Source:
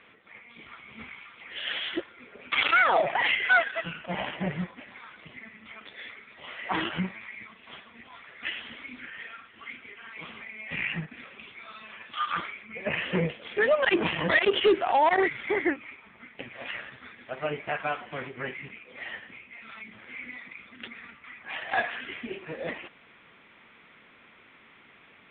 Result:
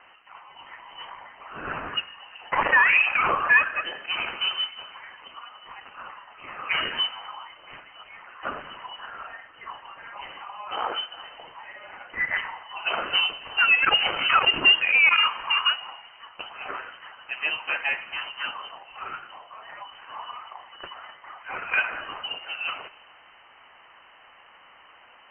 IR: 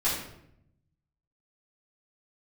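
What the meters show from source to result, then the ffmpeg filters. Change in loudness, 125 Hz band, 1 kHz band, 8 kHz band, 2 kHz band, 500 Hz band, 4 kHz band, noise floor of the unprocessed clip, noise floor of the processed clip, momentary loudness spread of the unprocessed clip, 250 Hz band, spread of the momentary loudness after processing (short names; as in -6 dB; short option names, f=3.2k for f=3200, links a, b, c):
+5.5 dB, under -10 dB, +2.0 dB, n/a, +5.5 dB, -9.5 dB, +10.0 dB, -56 dBFS, -53 dBFS, 23 LU, -11.0 dB, 24 LU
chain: -filter_complex "[0:a]asplit=2[a][b];[1:a]atrim=start_sample=2205,asetrate=26901,aresample=44100[c];[b][c]afir=irnorm=-1:irlink=0,volume=-28.5dB[d];[a][d]amix=inputs=2:normalize=0,lowpass=f=2.7k:t=q:w=0.5098,lowpass=f=2.7k:t=q:w=0.6013,lowpass=f=2.7k:t=q:w=0.9,lowpass=f=2.7k:t=q:w=2.563,afreqshift=-3200,volume=3dB"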